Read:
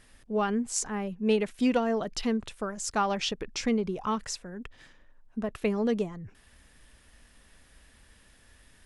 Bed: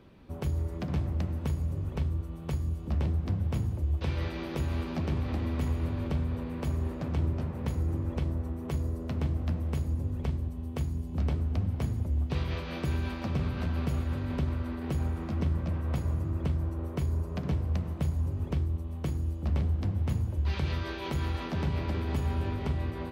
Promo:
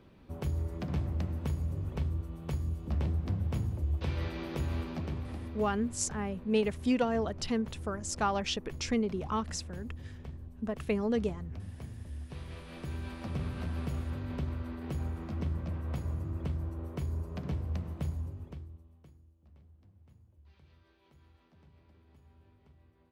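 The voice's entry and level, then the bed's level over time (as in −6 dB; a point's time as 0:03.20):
5.25 s, −3.0 dB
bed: 0:04.75 −2.5 dB
0:05.75 −13 dB
0:12.32 −13 dB
0:13.39 −5 dB
0:18.11 −5 dB
0:19.33 −31 dB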